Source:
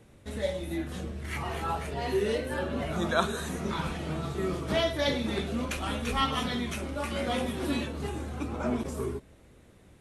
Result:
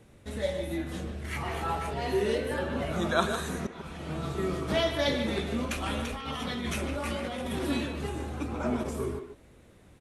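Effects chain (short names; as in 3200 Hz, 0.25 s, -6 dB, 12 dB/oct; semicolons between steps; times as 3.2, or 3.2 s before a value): 3.67–4.24 fade in; 5.97–7.59 negative-ratio compressor -34 dBFS, ratio -1; speakerphone echo 0.15 s, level -7 dB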